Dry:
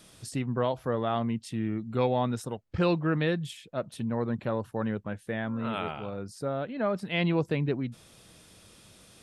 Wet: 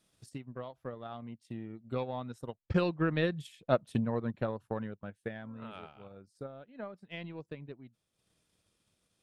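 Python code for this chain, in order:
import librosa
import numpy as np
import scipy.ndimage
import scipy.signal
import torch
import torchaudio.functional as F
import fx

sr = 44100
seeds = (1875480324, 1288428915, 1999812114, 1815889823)

y = fx.doppler_pass(x, sr, speed_mps=5, closest_m=2.5, pass_at_s=3.67)
y = fx.transient(y, sr, attack_db=9, sustain_db=-8)
y = y * librosa.db_to_amplitude(-1.5)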